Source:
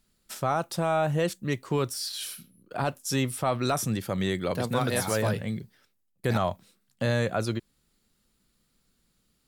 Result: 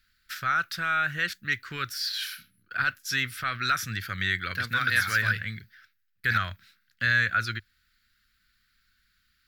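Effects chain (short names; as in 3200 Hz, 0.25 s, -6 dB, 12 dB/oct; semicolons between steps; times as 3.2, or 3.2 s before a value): EQ curve 100 Hz 0 dB, 140 Hz -11 dB, 210 Hz -11 dB, 570 Hz -19 dB, 920 Hz -18 dB, 1500 Hz +15 dB, 2900 Hz +4 dB, 4600 Hz +5 dB, 8900 Hz -11 dB, 14000 Hz +2 dB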